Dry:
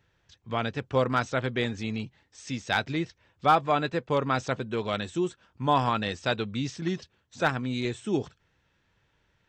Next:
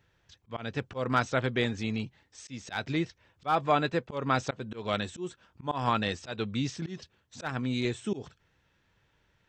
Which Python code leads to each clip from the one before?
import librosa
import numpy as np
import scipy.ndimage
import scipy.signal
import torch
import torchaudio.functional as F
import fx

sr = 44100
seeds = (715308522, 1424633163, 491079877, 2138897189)

y = fx.auto_swell(x, sr, attack_ms=181.0)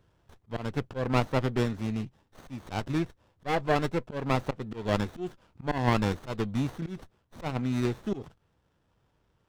y = fx.rider(x, sr, range_db=10, speed_s=2.0)
y = fx.running_max(y, sr, window=17)